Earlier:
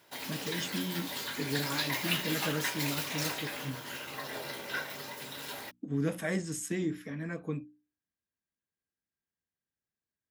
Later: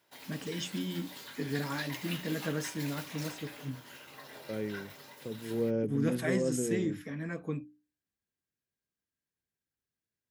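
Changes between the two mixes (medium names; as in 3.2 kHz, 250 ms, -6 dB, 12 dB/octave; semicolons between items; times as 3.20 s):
second voice: unmuted; background -9.5 dB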